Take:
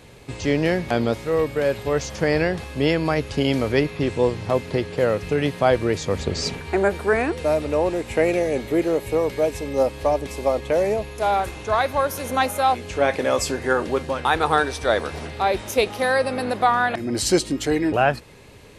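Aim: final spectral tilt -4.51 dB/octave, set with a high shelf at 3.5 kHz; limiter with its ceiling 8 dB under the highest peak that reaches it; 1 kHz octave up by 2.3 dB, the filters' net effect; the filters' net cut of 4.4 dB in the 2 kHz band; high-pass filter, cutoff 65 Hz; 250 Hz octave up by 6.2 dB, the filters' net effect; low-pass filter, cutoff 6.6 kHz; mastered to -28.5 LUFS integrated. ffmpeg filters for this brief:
-af "highpass=65,lowpass=6600,equalizer=f=250:t=o:g=8,equalizer=f=1000:t=o:g=4.5,equalizer=f=2000:t=o:g=-7,highshelf=f=3500:g=-4,volume=0.473,alimiter=limit=0.133:level=0:latency=1"

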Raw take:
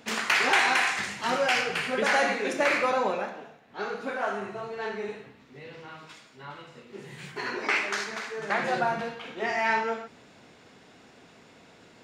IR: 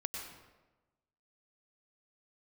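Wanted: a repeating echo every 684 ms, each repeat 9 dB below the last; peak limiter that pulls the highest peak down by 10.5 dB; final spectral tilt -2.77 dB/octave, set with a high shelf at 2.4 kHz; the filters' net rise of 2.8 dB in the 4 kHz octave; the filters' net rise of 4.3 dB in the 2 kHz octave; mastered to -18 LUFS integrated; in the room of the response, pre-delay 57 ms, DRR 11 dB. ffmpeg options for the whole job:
-filter_complex "[0:a]equalizer=f=2000:t=o:g=6.5,highshelf=f=2400:g=-5.5,equalizer=f=4000:t=o:g=6,alimiter=limit=0.158:level=0:latency=1,aecho=1:1:684|1368|2052|2736:0.355|0.124|0.0435|0.0152,asplit=2[s0][s1];[1:a]atrim=start_sample=2205,adelay=57[s2];[s1][s2]afir=irnorm=-1:irlink=0,volume=0.266[s3];[s0][s3]amix=inputs=2:normalize=0,volume=2.66"

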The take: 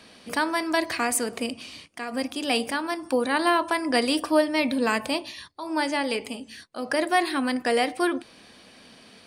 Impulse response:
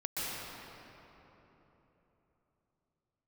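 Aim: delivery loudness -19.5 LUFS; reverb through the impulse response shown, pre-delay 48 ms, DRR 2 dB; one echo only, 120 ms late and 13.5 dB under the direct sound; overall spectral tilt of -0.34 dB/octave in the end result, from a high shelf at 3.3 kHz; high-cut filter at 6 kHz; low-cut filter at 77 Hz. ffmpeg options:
-filter_complex "[0:a]highpass=77,lowpass=6000,highshelf=f=3300:g=4.5,aecho=1:1:120:0.211,asplit=2[s0][s1];[1:a]atrim=start_sample=2205,adelay=48[s2];[s1][s2]afir=irnorm=-1:irlink=0,volume=0.422[s3];[s0][s3]amix=inputs=2:normalize=0,volume=1.5"

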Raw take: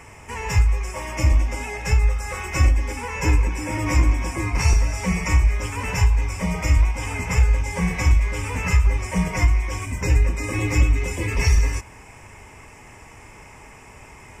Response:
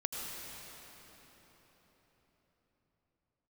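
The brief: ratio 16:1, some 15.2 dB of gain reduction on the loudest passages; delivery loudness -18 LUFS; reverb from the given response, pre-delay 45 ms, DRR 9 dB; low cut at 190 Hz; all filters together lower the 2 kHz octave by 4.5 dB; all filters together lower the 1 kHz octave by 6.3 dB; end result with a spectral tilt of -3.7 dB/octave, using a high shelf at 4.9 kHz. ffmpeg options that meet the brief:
-filter_complex "[0:a]highpass=190,equalizer=f=1000:t=o:g=-6.5,equalizer=f=2000:t=o:g=-5.5,highshelf=f=4900:g=8,acompressor=threshold=0.0141:ratio=16,asplit=2[s0][s1];[1:a]atrim=start_sample=2205,adelay=45[s2];[s1][s2]afir=irnorm=-1:irlink=0,volume=0.251[s3];[s0][s3]amix=inputs=2:normalize=0,volume=12.6"

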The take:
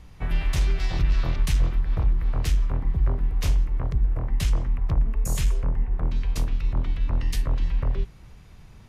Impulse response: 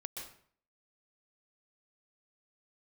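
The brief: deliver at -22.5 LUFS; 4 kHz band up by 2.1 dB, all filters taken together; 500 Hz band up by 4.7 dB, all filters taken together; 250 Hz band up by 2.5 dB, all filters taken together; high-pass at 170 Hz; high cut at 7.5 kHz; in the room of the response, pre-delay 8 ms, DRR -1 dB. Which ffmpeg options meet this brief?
-filter_complex "[0:a]highpass=170,lowpass=7500,equalizer=f=250:t=o:g=5,equalizer=f=500:t=o:g=4.5,equalizer=f=4000:t=o:g=3,asplit=2[s0][s1];[1:a]atrim=start_sample=2205,adelay=8[s2];[s1][s2]afir=irnorm=-1:irlink=0,volume=1.33[s3];[s0][s3]amix=inputs=2:normalize=0,volume=2.66"

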